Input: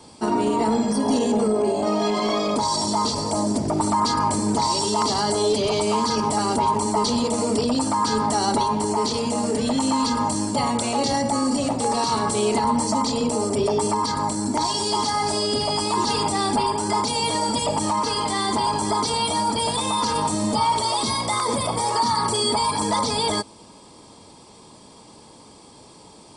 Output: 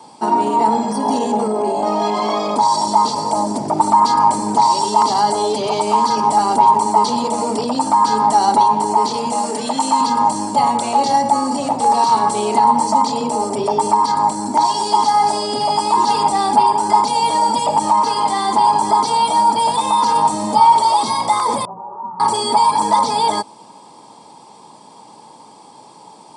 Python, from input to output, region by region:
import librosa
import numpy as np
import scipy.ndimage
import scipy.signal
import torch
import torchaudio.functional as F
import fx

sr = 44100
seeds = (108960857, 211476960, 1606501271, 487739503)

y = fx.chain(x, sr, fx.highpass(hz=130.0, slope=24),
    fx.tilt_eq(slope=1.5), at=(9.32, 10.01))
y = fx.chain(y, sr, fx.steep_lowpass(hz=1300.0, slope=48),
    fx.low_shelf(hz=490.0, db=6.0),
    fx.stiff_resonator(f0_hz=190.0, decay_s=0.28, stiffness=0.002), at=(21.65, 22.2))
y = scipy.signal.sosfilt(scipy.signal.butter(4, 130.0, 'highpass', fs=sr, output='sos'), y)
y = fx.peak_eq(y, sr, hz=870.0, db=12.5, octaves=0.56)